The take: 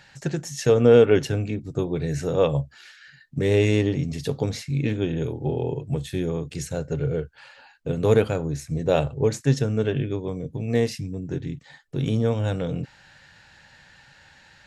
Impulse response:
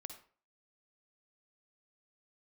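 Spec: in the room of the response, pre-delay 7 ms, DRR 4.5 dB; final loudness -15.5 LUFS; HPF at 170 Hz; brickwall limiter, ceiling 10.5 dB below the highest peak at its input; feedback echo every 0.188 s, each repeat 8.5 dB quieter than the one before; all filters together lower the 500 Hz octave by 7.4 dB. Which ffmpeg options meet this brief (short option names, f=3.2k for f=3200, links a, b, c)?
-filter_complex "[0:a]highpass=170,equalizer=f=500:t=o:g=-8.5,alimiter=limit=-20dB:level=0:latency=1,aecho=1:1:188|376|564|752:0.376|0.143|0.0543|0.0206,asplit=2[a][b];[1:a]atrim=start_sample=2205,adelay=7[c];[b][c]afir=irnorm=-1:irlink=0,volume=0dB[d];[a][d]amix=inputs=2:normalize=0,volume=14.5dB"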